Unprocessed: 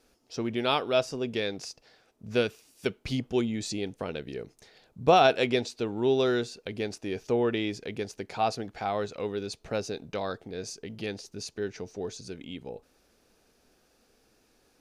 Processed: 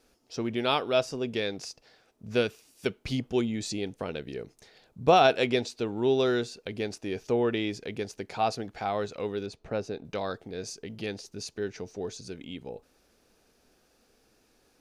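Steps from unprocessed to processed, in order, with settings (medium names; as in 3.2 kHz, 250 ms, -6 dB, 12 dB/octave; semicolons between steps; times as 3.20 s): 9.46–10.05 s: treble shelf 3.1 kHz -12 dB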